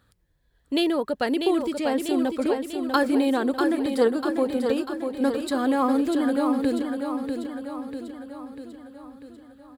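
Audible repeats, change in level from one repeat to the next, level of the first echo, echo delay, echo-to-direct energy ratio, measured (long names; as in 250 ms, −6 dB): 6, −5.0 dB, −6.0 dB, 644 ms, −4.5 dB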